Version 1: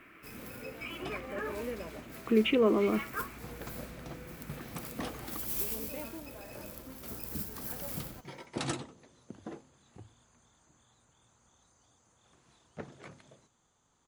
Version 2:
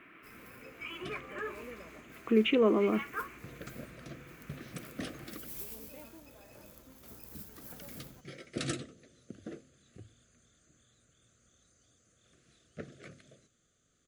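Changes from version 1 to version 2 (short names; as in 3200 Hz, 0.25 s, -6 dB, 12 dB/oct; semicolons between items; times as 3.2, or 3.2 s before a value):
first sound -9.0 dB; second sound: add Butterworth band-stop 910 Hz, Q 1.4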